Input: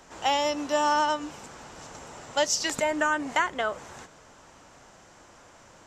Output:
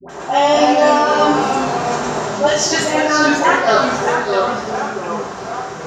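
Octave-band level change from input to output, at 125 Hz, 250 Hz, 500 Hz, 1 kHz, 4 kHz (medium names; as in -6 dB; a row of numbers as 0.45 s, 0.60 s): +19.5 dB, +16.0 dB, +15.5 dB, +13.5 dB, +10.0 dB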